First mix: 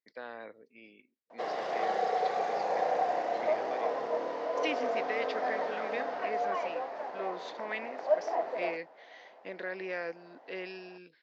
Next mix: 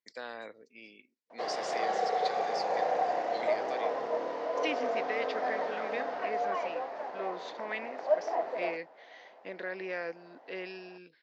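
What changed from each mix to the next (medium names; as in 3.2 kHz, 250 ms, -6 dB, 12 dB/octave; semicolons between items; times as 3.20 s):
first voice: remove distance through air 310 m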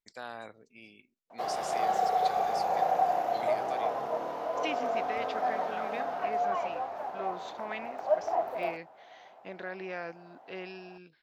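master: remove cabinet simulation 220–6600 Hz, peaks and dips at 280 Hz +3 dB, 490 Hz +6 dB, 760 Hz -5 dB, 1.3 kHz -3 dB, 1.9 kHz +6 dB, 4.7 kHz +4 dB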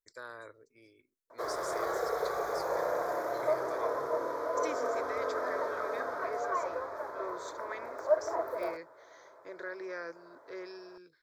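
second voice: remove distance through air 130 m; background +5.0 dB; master: add static phaser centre 760 Hz, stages 6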